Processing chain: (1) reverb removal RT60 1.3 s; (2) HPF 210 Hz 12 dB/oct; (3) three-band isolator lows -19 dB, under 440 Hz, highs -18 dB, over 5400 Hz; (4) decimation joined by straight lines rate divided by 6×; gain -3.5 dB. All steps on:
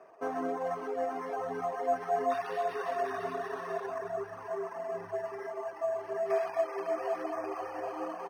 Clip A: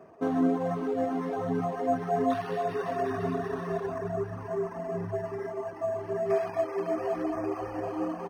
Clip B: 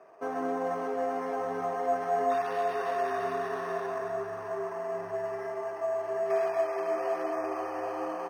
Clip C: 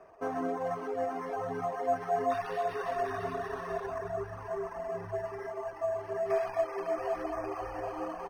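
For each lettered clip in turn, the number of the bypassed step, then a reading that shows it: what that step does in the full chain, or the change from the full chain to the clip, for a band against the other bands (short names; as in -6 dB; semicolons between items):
3, 125 Hz band +16.0 dB; 1, loudness change +3.0 LU; 2, 125 Hz band +8.5 dB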